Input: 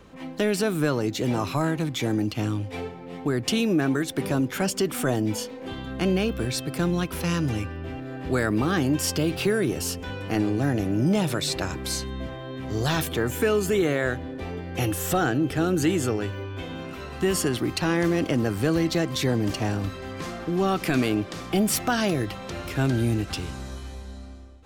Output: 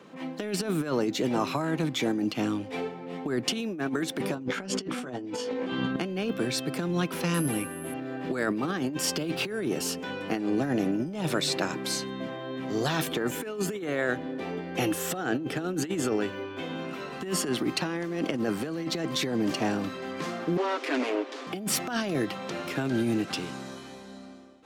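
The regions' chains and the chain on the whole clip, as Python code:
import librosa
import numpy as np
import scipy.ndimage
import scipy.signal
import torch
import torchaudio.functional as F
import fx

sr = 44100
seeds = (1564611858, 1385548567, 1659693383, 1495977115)

y = fx.chain(x, sr, fx.air_absorb(metres=69.0),
    fx.doubler(ms=16.0, db=-4.5),
    fx.env_flatten(amount_pct=70), at=(4.35, 5.96))
y = fx.chain(y, sr, fx.resample_bad(factor=4, down='filtered', up='zero_stuff'),
    fx.air_absorb(metres=58.0), at=(7.34, 7.94))
y = fx.chain(y, sr, fx.lower_of_two(delay_ms=7.4),
    fx.cheby1_highpass(hz=270.0, order=5),
    fx.air_absorb(metres=65.0), at=(20.57, 21.47))
y = scipy.signal.sosfilt(scipy.signal.butter(4, 160.0, 'highpass', fs=sr, output='sos'), y)
y = fx.high_shelf(y, sr, hz=7500.0, db=-7.0)
y = fx.over_compress(y, sr, threshold_db=-26.0, ratio=-0.5)
y = y * 10.0 ** (-1.5 / 20.0)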